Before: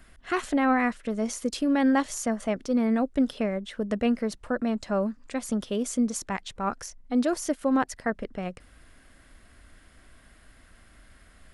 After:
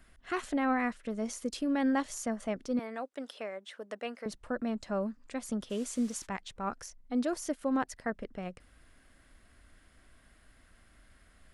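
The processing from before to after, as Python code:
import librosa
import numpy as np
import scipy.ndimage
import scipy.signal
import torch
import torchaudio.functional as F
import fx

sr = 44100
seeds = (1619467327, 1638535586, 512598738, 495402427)

y = fx.highpass(x, sr, hz=550.0, slope=12, at=(2.79, 4.26))
y = fx.dmg_noise_band(y, sr, seeds[0], low_hz=900.0, high_hz=9700.0, level_db=-50.0, at=(5.69, 6.25), fade=0.02)
y = y * librosa.db_to_amplitude(-6.5)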